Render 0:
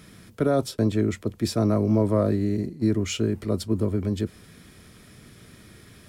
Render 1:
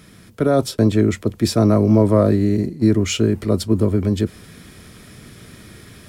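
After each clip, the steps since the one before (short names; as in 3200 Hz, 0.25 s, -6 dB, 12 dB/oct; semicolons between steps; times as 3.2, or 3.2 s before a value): AGC gain up to 5 dB; gain +2.5 dB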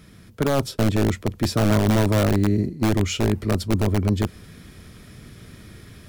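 bell 8800 Hz -3 dB 0.64 oct; in parallel at -3 dB: wrapped overs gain 8 dB; on the sum: low shelf 120 Hz +7.5 dB; gain -9 dB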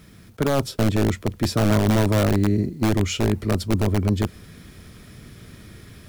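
bit-crush 10-bit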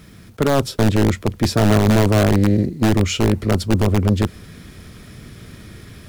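Doppler distortion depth 0.44 ms; gain +4.5 dB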